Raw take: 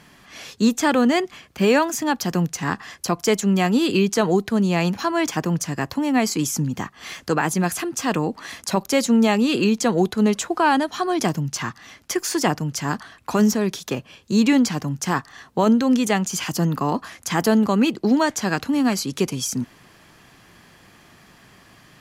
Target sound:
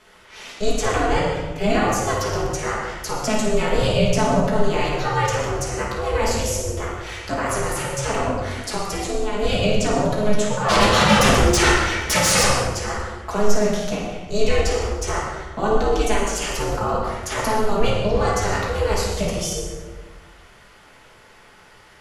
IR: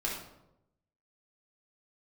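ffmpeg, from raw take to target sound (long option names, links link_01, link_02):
-filter_complex "[0:a]bass=frequency=250:gain=-10,treble=frequency=4000:gain=-1,alimiter=limit=-14dB:level=0:latency=1:release=27,asplit=3[link_01][link_02][link_03];[link_01]afade=type=out:start_time=10.68:duration=0.02[link_04];[link_02]aeval=exprs='0.2*sin(PI/2*3.98*val(0)/0.2)':channel_layout=same,afade=type=in:start_time=10.68:duration=0.02,afade=type=out:start_time=12.45:duration=0.02[link_05];[link_03]afade=type=in:start_time=12.45:duration=0.02[link_06];[link_04][link_05][link_06]amix=inputs=3:normalize=0,aeval=exprs='val(0)*sin(2*PI*210*n/s)':channel_layout=same,asettb=1/sr,asplit=3[link_07][link_08][link_09];[link_07]atrim=end=8.764[link_10];[link_08]atrim=start=8.76:end=9.4,asetpts=PTS-STARTPTS,afade=type=in:duration=0.004:curve=qsin,afade=type=out:start_time=0.636:duration=0.004:curve=qsin,acompressor=threshold=-28dB:ratio=5[link_11];[link_09]atrim=start=9.396[link_12];[link_10][link_11]acrossfade=duration=0.004:curve1=hsin:curve2=qsin[link_13];[link_13][link_12]acrossfade=duration=0.004:curve1=qsin:curve2=hsin[link_14];[1:a]atrim=start_sample=2205,asetrate=23814,aresample=44100[link_15];[link_14][link_15]afir=irnorm=-1:irlink=0,volume=-3dB"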